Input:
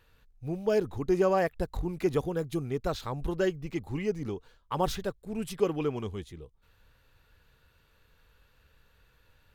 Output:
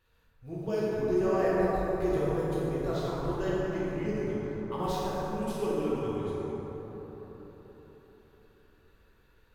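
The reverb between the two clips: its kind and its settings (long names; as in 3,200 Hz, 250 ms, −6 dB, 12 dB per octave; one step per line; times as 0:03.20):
dense smooth reverb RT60 4.6 s, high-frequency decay 0.35×, DRR −9 dB
level −10 dB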